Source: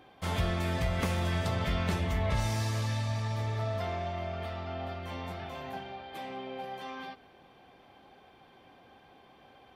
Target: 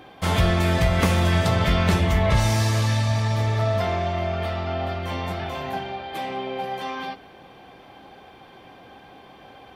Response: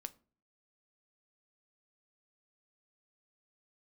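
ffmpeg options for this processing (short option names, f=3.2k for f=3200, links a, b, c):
-filter_complex "[0:a]asplit=2[a][b];[1:a]atrim=start_sample=2205[c];[b][c]afir=irnorm=-1:irlink=0,volume=12dB[d];[a][d]amix=inputs=2:normalize=0"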